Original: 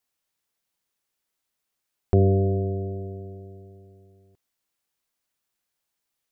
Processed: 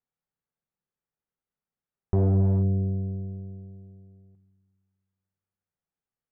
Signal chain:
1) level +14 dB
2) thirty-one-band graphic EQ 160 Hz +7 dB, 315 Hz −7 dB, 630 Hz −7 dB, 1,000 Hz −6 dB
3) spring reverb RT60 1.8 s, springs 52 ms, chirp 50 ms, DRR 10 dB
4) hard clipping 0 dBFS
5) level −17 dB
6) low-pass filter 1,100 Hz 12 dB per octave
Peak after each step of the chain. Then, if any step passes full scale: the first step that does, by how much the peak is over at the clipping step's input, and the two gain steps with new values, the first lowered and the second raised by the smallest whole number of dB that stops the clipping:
+6.0, +5.0, +5.0, 0.0, −17.0, −16.5 dBFS
step 1, 5.0 dB
step 1 +9 dB, step 5 −12 dB

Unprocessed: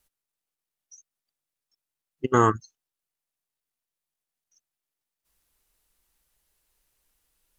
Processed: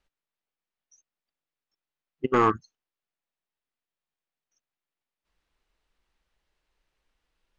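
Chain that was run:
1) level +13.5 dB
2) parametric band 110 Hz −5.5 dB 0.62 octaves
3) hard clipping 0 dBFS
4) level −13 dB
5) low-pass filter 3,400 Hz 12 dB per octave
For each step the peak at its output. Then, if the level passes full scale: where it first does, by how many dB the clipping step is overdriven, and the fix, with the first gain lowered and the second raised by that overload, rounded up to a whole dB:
+9.0, +8.5, 0.0, −13.0, −12.5 dBFS
step 1, 8.5 dB
step 1 +4.5 dB, step 4 −4 dB

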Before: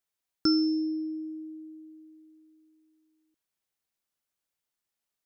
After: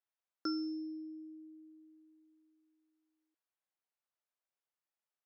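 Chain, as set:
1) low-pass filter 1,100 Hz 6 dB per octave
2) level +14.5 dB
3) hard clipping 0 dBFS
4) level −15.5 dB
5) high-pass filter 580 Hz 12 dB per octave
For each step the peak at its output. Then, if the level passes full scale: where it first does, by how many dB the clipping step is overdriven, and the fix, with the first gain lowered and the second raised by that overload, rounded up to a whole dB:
−17.0, −2.5, −2.5, −18.0, −25.5 dBFS
no step passes full scale

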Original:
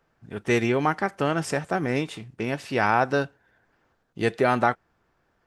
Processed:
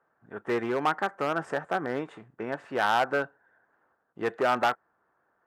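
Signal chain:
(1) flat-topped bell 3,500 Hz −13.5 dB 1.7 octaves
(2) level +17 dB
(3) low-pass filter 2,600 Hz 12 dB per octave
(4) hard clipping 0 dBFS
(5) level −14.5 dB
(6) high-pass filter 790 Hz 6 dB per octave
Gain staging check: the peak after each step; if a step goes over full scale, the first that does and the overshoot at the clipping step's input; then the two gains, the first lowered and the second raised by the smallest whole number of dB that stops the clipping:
−8.0, +9.0, +9.0, 0.0, −14.5, −11.5 dBFS
step 2, 9.0 dB
step 2 +8 dB, step 5 −5.5 dB

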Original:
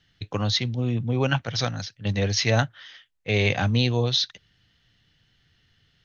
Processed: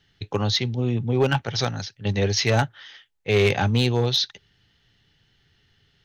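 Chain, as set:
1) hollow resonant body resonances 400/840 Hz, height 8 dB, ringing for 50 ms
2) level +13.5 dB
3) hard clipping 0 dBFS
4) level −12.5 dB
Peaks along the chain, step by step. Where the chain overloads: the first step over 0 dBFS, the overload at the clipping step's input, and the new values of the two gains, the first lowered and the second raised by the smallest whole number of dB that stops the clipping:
−6.5, +7.0, 0.0, −12.5 dBFS
step 2, 7.0 dB
step 2 +6.5 dB, step 4 −5.5 dB

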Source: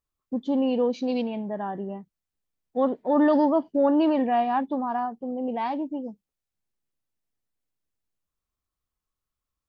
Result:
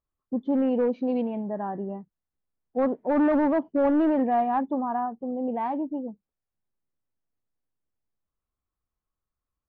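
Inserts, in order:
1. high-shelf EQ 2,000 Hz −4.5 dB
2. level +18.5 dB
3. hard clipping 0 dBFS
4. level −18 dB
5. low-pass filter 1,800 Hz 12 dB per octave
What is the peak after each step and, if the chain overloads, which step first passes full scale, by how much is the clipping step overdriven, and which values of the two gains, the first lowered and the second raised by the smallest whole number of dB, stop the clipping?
−12.0, +6.5, 0.0, −18.0, −17.5 dBFS
step 2, 6.5 dB
step 2 +11.5 dB, step 4 −11 dB

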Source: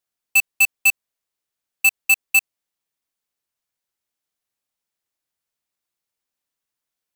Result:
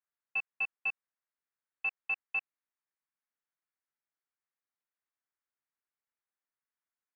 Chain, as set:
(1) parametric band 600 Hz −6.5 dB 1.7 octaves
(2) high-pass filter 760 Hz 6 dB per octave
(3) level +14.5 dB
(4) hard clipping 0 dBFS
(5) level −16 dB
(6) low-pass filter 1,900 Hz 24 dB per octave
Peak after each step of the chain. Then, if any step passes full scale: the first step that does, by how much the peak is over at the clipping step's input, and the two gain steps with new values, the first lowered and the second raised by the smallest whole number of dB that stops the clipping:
−10.0, −8.0, +6.5, 0.0, −16.0, −25.5 dBFS
step 3, 6.5 dB
step 3 +7.5 dB, step 5 −9 dB

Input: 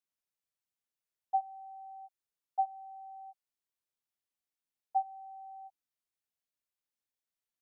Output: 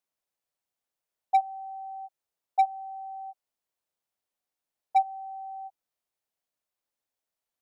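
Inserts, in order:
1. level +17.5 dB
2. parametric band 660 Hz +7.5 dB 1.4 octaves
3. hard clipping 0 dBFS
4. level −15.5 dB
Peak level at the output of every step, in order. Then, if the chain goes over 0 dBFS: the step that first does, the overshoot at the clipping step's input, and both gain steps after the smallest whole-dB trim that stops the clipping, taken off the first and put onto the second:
−3.5, +3.0, 0.0, −15.5 dBFS
step 2, 3.0 dB
step 1 +14.5 dB, step 4 −12.5 dB

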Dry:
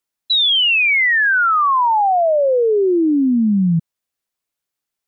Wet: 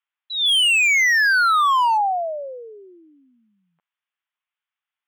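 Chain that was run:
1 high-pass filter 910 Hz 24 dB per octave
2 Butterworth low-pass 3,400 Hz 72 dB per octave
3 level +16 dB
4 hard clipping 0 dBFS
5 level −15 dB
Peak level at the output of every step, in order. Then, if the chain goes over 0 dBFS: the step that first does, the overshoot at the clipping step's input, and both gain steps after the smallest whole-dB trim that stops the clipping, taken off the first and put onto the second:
−11.5, −11.5, +4.5, 0.0, −15.0 dBFS
step 3, 4.5 dB
step 3 +11 dB, step 5 −10 dB

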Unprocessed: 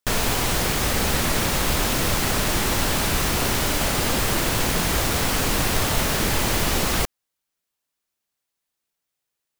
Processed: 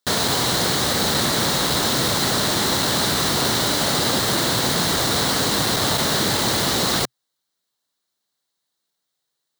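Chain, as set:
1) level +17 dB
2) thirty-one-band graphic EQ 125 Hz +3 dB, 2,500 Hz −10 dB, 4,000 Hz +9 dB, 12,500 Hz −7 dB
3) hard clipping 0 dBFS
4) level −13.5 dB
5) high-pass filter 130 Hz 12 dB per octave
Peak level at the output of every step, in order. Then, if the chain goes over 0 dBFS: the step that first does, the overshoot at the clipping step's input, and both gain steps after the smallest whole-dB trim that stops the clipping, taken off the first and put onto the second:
+8.5, +9.0, 0.0, −13.5, −8.5 dBFS
step 1, 9.0 dB
step 1 +8 dB, step 4 −4.5 dB

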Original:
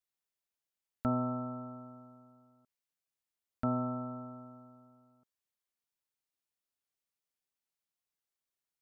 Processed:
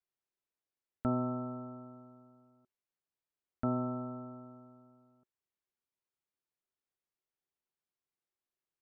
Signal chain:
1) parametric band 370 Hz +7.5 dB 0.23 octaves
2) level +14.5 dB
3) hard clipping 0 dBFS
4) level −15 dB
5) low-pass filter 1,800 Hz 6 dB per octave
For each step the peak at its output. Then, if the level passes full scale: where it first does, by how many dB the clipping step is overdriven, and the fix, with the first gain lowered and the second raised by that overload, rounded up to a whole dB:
−19.5, −5.0, −5.0, −20.0, −20.5 dBFS
no step passes full scale

